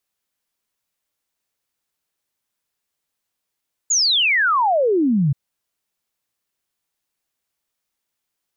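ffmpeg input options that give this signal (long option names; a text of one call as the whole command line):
ffmpeg -f lavfi -i "aevalsrc='0.2*clip(min(t,1.43-t)/0.01,0,1)*sin(2*PI*7100*1.43/log(130/7100)*(exp(log(130/7100)*t/1.43)-1))':duration=1.43:sample_rate=44100" out.wav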